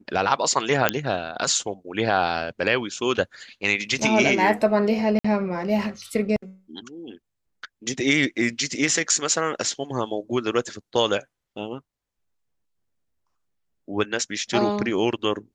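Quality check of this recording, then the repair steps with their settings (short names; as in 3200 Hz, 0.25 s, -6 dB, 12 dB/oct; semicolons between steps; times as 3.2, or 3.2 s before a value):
0.89 pop -2 dBFS
5.19–5.25 gap 55 ms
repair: de-click; interpolate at 5.19, 55 ms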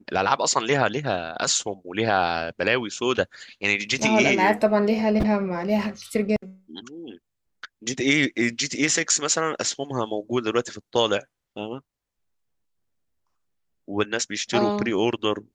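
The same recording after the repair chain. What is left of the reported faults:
none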